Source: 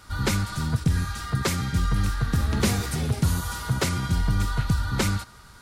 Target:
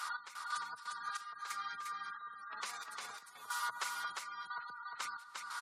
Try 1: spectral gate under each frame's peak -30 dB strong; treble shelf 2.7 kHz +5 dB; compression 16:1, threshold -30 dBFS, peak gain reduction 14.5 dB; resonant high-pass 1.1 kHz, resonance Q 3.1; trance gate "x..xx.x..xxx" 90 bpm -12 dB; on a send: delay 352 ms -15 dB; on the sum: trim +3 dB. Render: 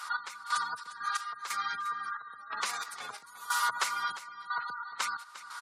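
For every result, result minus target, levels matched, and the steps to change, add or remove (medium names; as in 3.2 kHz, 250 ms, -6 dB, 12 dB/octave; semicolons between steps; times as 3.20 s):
compression: peak gain reduction -9.5 dB; echo-to-direct -11 dB
change: compression 16:1, threshold -40 dBFS, peak gain reduction 23.5 dB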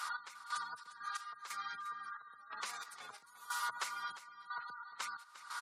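echo-to-direct -11 dB
change: delay 352 ms -4 dB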